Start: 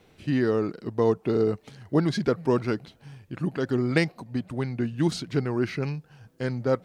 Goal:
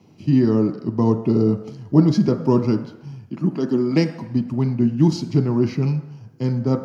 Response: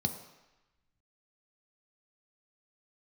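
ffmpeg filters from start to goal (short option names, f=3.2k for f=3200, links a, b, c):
-filter_complex "[0:a]asettb=1/sr,asplit=3[a][b][c];[a]atrim=end=3.264[d];[b]atrim=start=3.26:end=4.11,asetpts=PTS-STARTPTS,afade=t=in:d=0.004:c=qsin,afade=t=out:st=0.846:d=0.004:c=qsin,highpass=f=170:w=0.5412,highpass=f=170:w=1.3066[e];[c]atrim=start=4.106[f];[d][e]acrossfade=d=0.004:c1=hsin:c2=qsin[g];[g][f]acrossfade=d=0.004:c1=qsin:c2=hsin[h];[1:a]atrim=start_sample=2205,asetrate=52920,aresample=44100[i];[h][i]afir=irnorm=-1:irlink=0,volume=-3dB"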